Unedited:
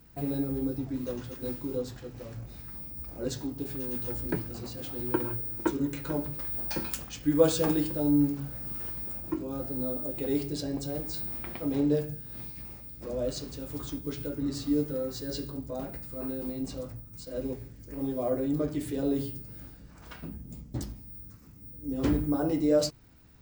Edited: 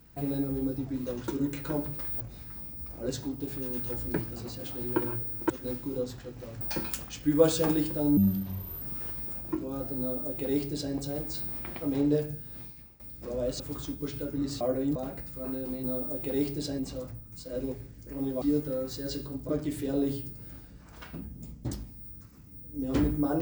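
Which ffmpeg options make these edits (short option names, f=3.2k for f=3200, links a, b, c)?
-filter_complex "[0:a]asplit=15[a][b][c][d][e][f][g][h][i][j][k][l][m][n][o];[a]atrim=end=1.282[p];[b]atrim=start=5.678:end=6.612[q];[c]atrim=start=2.388:end=5.682[r];[d]atrim=start=1.278:end=2.392[s];[e]atrim=start=6.608:end=8.174[t];[f]atrim=start=8.17:end=8.61,asetpts=PTS-STARTPTS,asetrate=29988,aresample=44100,atrim=end_sample=28535,asetpts=PTS-STARTPTS[u];[g]atrim=start=8.606:end=12.79,asetpts=PTS-STARTPTS,afade=t=out:st=3.644:d=0.54:silence=0.11885[v];[h]atrim=start=12.79:end=13.392,asetpts=PTS-STARTPTS,afade=t=in:d=0.004:c=hsin:silence=0.11885[w];[i]atrim=start=13.638:end=14.652[x];[j]atrim=start=18.228:end=18.582[y];[k]atrim=start=15.718:end=16.602[z];[l]atrim=start=9.778:end=10.732[aa];[m]atrim=start=16.598:end=18.232[ab];[n]atrim=start=14.648:end=15.722[ac];[o]atrim=start=18.578[ad];[p][q]acrossfade=d=0.004:c1=hsin:c2=hsin[ae];[ae][r]acrossfade=d=0.004:c1=hsin:c2=hsin[af];[af][s]acrossfade=d=0.004:c1=hsin:c2=hsin[ag];[ag][t]acrossfade=d=0.004:c1=hsin:c2=hsin[ah];[ah][u]acrossfade=d=0.004:c1=hsin:c2=hsin[ai];[v][w]concat=n=2:v=0:a=1[aj];[ai][aj]acrossfade=d=0.004:c1=hsin:c2=hsin[ak];[ak][x]acrossfade=d=0.004:c1=hsin:c2=hsin[al];[al][y]acrossfade=d=0.004:c1=hsin:c2=hsin[am];[am][z]acrossfade=d=0.004:c1=hsin:c2=hsin[an];[an][aa]acrossfade=d=0.004:c1=hsin:c2=hsin[ao];[ao][ab]acrossfade=d=0.004:c1=hsin:c2=hsin[ap];[ap][ac]acrossfade=d=0.004:c1=hsin:c2=hsin[aq];[aq][ad]acrossfade=d=0.004:c1=hsin:c2=hsin"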